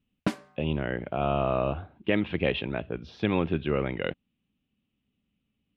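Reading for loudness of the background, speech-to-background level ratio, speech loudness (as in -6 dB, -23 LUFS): -33.0 LUFS, 3.5 dB, -29.5 LUFS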